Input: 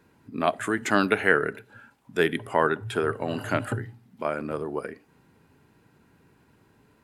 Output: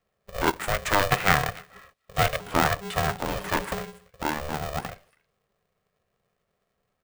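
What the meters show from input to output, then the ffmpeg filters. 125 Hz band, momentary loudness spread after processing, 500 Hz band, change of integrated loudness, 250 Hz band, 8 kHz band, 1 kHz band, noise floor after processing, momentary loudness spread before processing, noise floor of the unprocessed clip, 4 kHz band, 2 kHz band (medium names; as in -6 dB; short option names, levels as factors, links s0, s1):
+3.5 dB, 13 LU, -3.5 dB, 0.0 dB, -3.5 dB, +8.0 dB, +3.0 dB, -78 dBFS, 12 LU, -62 dBFS, +6.0 dB, -0.5 dB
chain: -filter_complex "[0:a]agate=range=0.158:threshold=0.002:ratio=16:detection=peak,acrossover=split=190|1100|1900[s0][s1][s2][s3];[s0]volume=44.7,asoftclip=hard,volume=0.0224[s4];[s3]aecho=1:1:282:0.168[s5];[s4][s1][s2][s5]amix=inputs=4:normalize=0,aeval=exprs='val(0)*sgn(sin(2*PI*300*n/s))':c=same"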